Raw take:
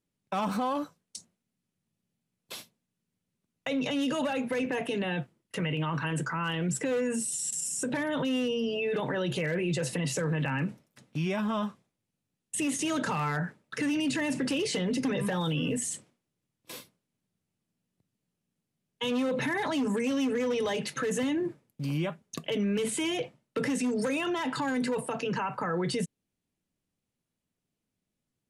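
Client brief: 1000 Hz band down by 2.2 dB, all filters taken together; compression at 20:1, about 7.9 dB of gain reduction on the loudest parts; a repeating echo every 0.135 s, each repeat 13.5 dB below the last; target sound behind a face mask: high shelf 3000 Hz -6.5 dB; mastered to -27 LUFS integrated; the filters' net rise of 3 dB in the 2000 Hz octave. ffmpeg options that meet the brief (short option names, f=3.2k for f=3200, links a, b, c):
-af "equalizer=f=1k:t=o:g=-4,equalizer=f=2k:t=o:g=7.5,acompressor=threshold=-32dB:ratio=20,highshelf=f=3k:g=-6.5,aecho=1:1:135|270:0.211|0.0444,volume=10dB"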